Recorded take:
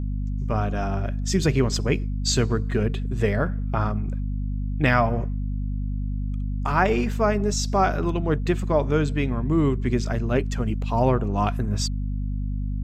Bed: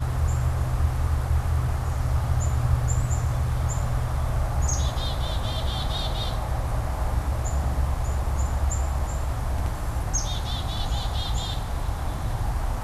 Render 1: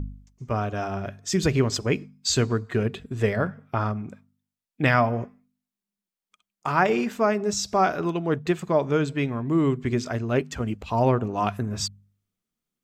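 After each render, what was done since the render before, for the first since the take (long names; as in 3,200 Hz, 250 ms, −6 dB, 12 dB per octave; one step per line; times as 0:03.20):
hum removal 50 Hz, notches 5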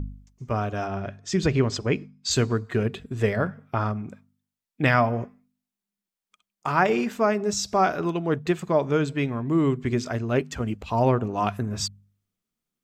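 0:00.86–0:02.31: high-frequency loss of the air 68 metres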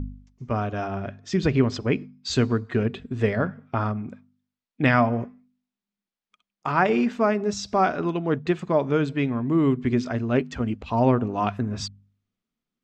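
low-pass filter 4,700 Hz 12 dB per octave
parametric band 250 Hz +6 dB 0.29 octaves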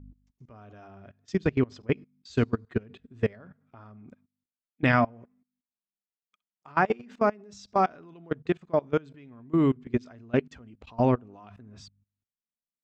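output level in coarse steps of 20 dB
expander for the loud parts 1.5 to 1, over −36 dBFS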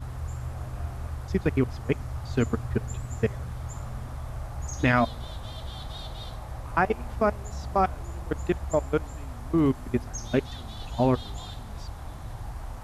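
mix in bed −10.5 dB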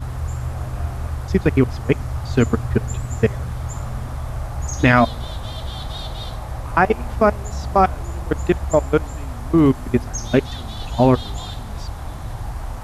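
level +8.5 dB
brickwall limiter −2 dBFS, peak gain reduction 1.5 dB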